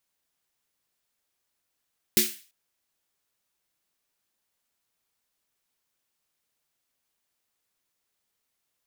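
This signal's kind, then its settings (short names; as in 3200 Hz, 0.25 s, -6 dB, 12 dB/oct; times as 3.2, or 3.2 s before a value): snare drum length 0.34 s, tones 220 Hz, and 360 Hz, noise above 1900 Hz, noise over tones 5 dB, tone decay 0.24 s, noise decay 0.39 s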